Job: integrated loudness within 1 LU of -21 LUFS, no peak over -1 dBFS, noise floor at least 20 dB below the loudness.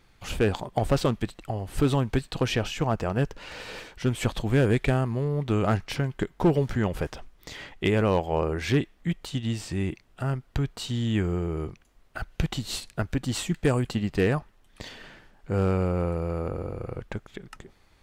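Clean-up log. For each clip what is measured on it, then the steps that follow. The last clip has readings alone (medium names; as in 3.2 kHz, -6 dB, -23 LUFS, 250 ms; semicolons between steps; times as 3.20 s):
clipped samples 0.3%; clipping level -14.0 dBFS; loudness -27.5 LUFS; peak level -14.0 dBFS; loudness target -21.0 LUFS
-> clip repair -14 dBFS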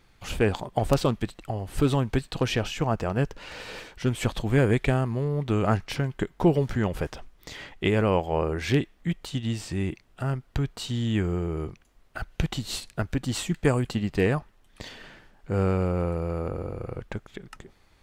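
clipped samples 0.0%; loudness -27.5 LUFS; peak level -6.0 dBFS; loudness target -21.0 LUFS
-> trim +6.5 dB; peak limiter -1 dBFS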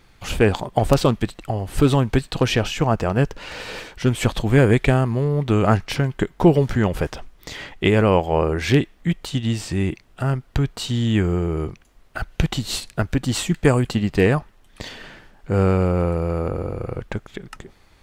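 loudness -21.0 LUFS; peak level -1.0 dBFS; noise floor -53 dBFS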